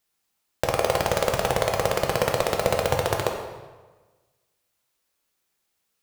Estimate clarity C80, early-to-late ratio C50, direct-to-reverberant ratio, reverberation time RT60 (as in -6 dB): 7.0 dB, 5.0 dB, 1.5 dB, 1.3 s